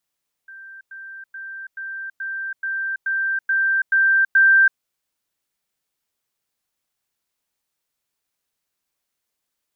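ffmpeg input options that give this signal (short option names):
-f lavfi -i "aevalsrc='pow(10,(-37+3*floor(t/0.43))/20)*sin(2*PI*1570*t)*clip(min(mod(t,0.43),0.33-mod(t,0.43))/0.005,0,1)':d=4.3:s=44100"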